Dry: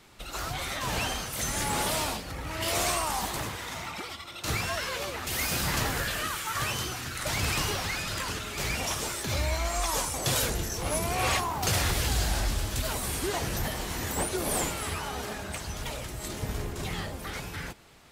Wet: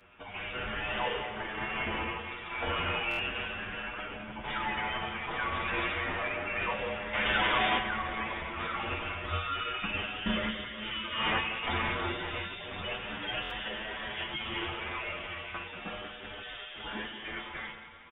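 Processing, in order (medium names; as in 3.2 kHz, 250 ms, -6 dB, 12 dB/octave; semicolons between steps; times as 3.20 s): 1.26–2.19 s: bass shelf 460 Hz -10 dB; 10.15–11.19 s: band-stop 2.8 kHz, Q 9.9; two-band feedback delay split 1.2 kHz, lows 86 ms, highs 186 ms, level -10.5 dB; spectral gate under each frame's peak -30 dB strong; tilt EQ +4.5 dB/octave; FDN reverb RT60 3.3 s, high-frequency decay 0.45×, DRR 9 dB; 7.13–7.79 s: overdrive pedal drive 23 dB, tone 1.9 kHz, clips at -6.5 dBFS; feedback comb 130 Hz, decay 0.28 s, harmonics all, mix 80%; frequency inversion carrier 3.6 kHz; buffer glitch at 3.09/13.41 s, samples 1024, times 3; endless flanger 8.2 ms +0.32 Hz; trim +7 dB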